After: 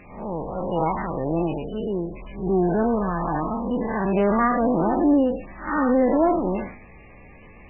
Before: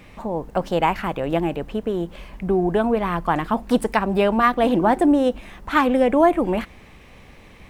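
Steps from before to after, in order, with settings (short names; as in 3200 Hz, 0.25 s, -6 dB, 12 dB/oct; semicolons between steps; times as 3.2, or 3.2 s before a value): time blur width 0.161 s; 1.48–2.84 high shelf 2900 Hz +10 dB; 3.59–4.14 notch 1300 Hz, Q 8.1; thin delay 0.265 s, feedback 31%, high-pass 3500 Hz, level -23 dB; gain +1.5 dB; MP3 8 kbps 16000 Hz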